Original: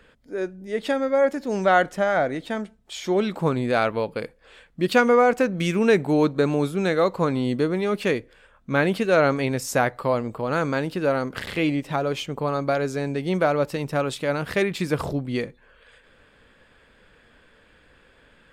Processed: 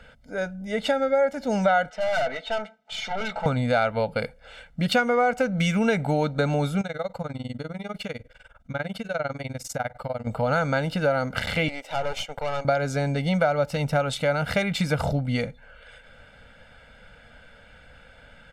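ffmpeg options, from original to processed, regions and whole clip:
-filter_complex "[0:a]asettb=1/sr,asplit=3[a][b][c];[a]atrim=end=1.904[d];[b]atrim=start=1.9:end=3.46,asetpts=PTS-STARTPTS,afade=t=in:d=0.004:c=qsin,afade=t=out:st=1.556:d=0.004:c=qsin,highpass=490,lowpass=4.3k,aecho=1:1:4.6:0.81,atrim=end_sample=68796,aeval=exprs='(tanh(25.1*val(0)+0.35)-tanh(0.35))/25.1':c=same[e];[c]atrim=start=3.456[f];[d][e]acrossfade=d=0.004:c1=hsin:c2=qsin[g];[g][f]acrossfade=d=0.004:c1=qsin:c2=hsin,asettb=1/sr,asplit=3[h][i][j];[h]atrim=end=6.814[k];[i]atrim=start=6.81:end=10.27,asetpts=PTS-STARTPTS,afade=t=in:d=0.004:c=qsin,afade=t=out:st=3.456:d=0.004:c=qsin,tremolo=f=20:d=0.95,acompressor=threshold=-38dB:ratio=2:attack=3.2:release=140:knee=1:detection=peak[l];[j]atrim=start=10.266[m];[k][l]acrossfade=d=0.004:c1=hsin:c2=qsin[n];[n][m]acrossfade=d=0.004:c1=qsin:c2=hsin,asettb=1/sr,asplit=3[o][p][q];[o]atrim=end=11.684[r];[p]atrim=start=11.68:end=12.65,asetpts=PTS-STARTPTS,afade=t=in:d=0.004:c=qsin,afade=t=out:st=0.966:d=0.004:c=qsin,highpass=f=380:w=0.5412,highpass=f=380:w=1.3066,aeval=exprs='(tanh(25.1*val(0)+0.75)-tanh(0.75))/25.1':c=same[s];[q]atrim=start=12.646[t];[r][s]acrossfade=d=0.004:c1=hsin:c2=qsin[u];[u][t]acrossfade=d=0.004:c1=qsin:c2=hsin,aecho=1:1:1.4:0.98,acompressor=threshold=-23dB:ratio=3,highshelf=f=11k:g=-9.5,volume=2.5dB"

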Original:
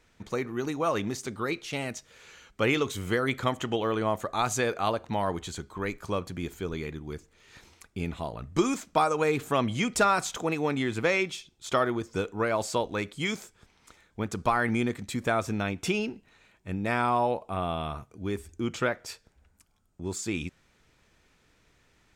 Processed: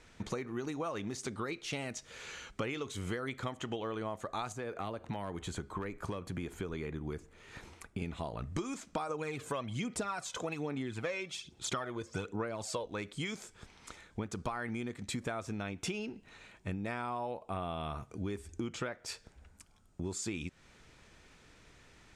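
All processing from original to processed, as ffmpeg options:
-filter_complex "[0:a]asettb=1/sr,asplit=3[a][b][c];[a]atrim=end=4.524[d];[b]atrim=start=4.52:end=8.02,asetpts=PTS-STARTPTS,afade=t=in:d=0.004:c=qsin,afade=t=out:st=3.496:d=0.004:c=qsin,equalizer=f=5.1k:w=0.63:g=-8.5,acrossover=split=480|1500[e][f][g];[e]acompressor=threshold=-37dB:ratio=4[h];[f]acompressor=threshold=-42dB:ratio=4[i];[g]acompressor=threshold=-46dB:ratio=4[j];[h][i][j]amix=inputs=3:normalize=0,asoftclip=type=hard:threshold=-26.5dB[k];[c]atrim=start=8.016[l];[d][k]acrossfade=d=0.004:c1=hsin:c2=qsin[m];[m][l]acrossfade=d=0.004:c1=qsin:c2=hsin,asettb=1/sr,asplit=3[n][o][p];[n]atrim=end=9.094[q];[o]atrim=start=9.09:end=12.86,asetpts=PTS-STARTPTS,afade=t=in:d=0.004:c=qsin,afade=t=out:st=3.766:d=0.004:c=qsin,highpass=62,aphaser=in_gain=1:out_gain=1:delay=2:decay=0.5:speed=1.2:type=sinusoidal[r];[p]atrim=start=12.856[s];[q][r]acrossfade=d=0.004:c1=hsin:c2=qsin[t];[t][s]acrossfade=d=0.004:c1=qsin:c2=hsin,acompressor=threshold=-40dB:ratio=8,lowpass=f=11k:w=0.5412,lowpass=f=11k:w=1.3066,volume=5dB"

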